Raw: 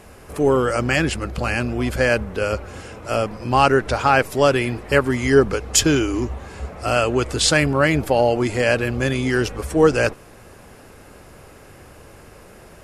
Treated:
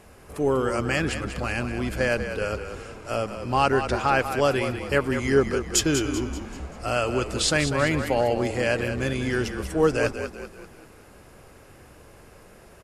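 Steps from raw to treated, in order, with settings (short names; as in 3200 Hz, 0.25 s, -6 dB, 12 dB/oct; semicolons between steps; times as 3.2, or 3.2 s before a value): frequency-shifting echo 0.193 s, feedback 46%, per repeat -31 Hz, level -9 dB; gain -6 dB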